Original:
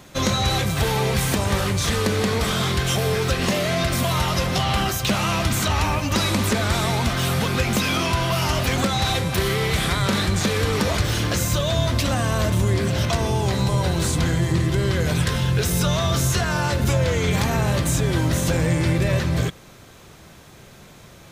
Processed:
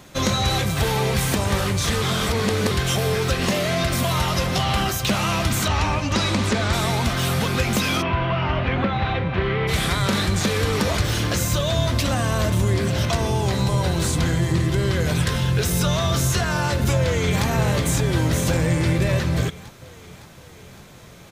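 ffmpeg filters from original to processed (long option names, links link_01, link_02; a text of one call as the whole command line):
ffmpeg -i in.wav -filter_complex "[0:a]asettb=1/sr,asplit=3[link_01][link_02][link_03];[link_01]atrim=end=5.684[link_04];[link_02]atrim=start=5.68:end=6.73,asetpts=PTS-STARTPTS,afade=type=in:duration=0.004:curve=qsin,afade=type=out:start_time=1.046:duration=0.004:curve=qsin,lowpass=7100[link_05];[link_03]atrim=start=6.726[link_06];[link_04][link_05]acrossfade=duration=0.004:curve1=hsin:curve2=qsin[link_07];[link_07][link_06]acrossfade=duration=0.004:curve1=qsin:curve2=hsin,asplit=3[link_08][link_09][link_10];[link_08]afade=type=out:start_time=8.01:duration=0.02[link_11];[link_09]lowpass=frequency=2800:width=0.5412,lowpass=frequency=2800:width=1.3066,afade=type=in:start_time=8.01:duration=0.02,afade=type=out:start_time=9.67:duration=0.02[link_12];[link_10]afade=type=in:start_time=9.67:duration=0.02[link_13];[link_11][link_12][link_13]amix=inputs=3:normalize=0,asplit=2[link_14][link_15];[link_15]afade=type=in:start_time=17.01:duration=0.01,afade=type=out:start_time=17.45:duration=0.01,aecho=0:1:560|1120|1680|2240|2800|3360|3920|4480|5040:0.375837|0.244294|0.158791|0.103214|0.0670893|0.0436081|0.0283452|0.0184244|0.0119759[link_16];[link_14][link_16]amix=inputs=2:normalize=0,asplit=3[link_17][link_18][link_19];[link_17]atrim=end=2.022[link_20];[link_18]atrim=start=2.018:end=2.712,asetpts=PTS-STARTPTS,areverse[link_21];[link_19]atrim=start=2.708[link_22];[link_20][link_21]acrossfade=duration=0.004:curve1=hsin:curve2=hsin[link_23];[link_23][link_22]acrossfade=duration=0.004:curve1=hsin:curve2=hsin" out.wav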